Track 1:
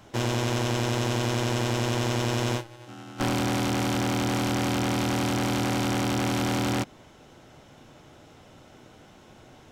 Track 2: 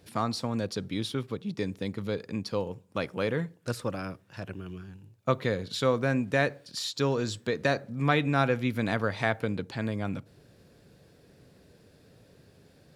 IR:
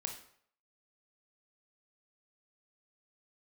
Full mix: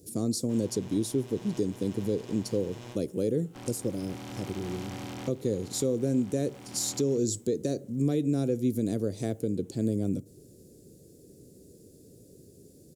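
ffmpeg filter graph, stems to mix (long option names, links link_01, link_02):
-filter_complex "[0:a]equalizer=frequency=1400:width_type=o:width=0.31:gain=-4,adelay=350,volume=-13dB[link_01];[1:a]firequalizer=gain_entry='entry(140,0);entry(360,8);entry(890,-22);entry(1600,-23);entry(6800,10)':delay=0.05:min_phase=1,volume=1.5dB,asplit=2[link_02][link_03];[link_03]apad=whole_len=443894[link_04];[link_01][link_04]sidechaincompress=threshold=-28dB:ratio=8:attack=12:release=828[link_05];[link_05][link_02]amix=inputs=2:normalize=0,alimiter=limit=-18dB:level=0:latency=1:release=340"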